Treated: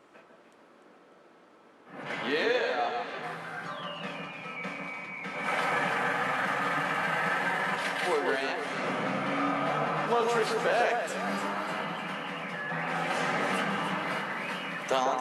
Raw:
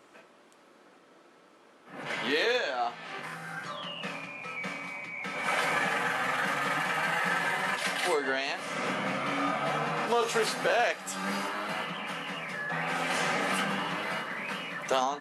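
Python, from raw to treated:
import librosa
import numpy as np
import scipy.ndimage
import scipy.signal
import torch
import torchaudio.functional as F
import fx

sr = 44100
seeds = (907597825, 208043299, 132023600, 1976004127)

y = fx.high_shelf(x, sr, hz=3500.0, db=fx.steps((0.0, -8.0), (14.07, -2.5)))
y = fx.echo_alternate(y, sr, ms=149, hz=1700.0, feedback_pct=67, wet_db=-4.0)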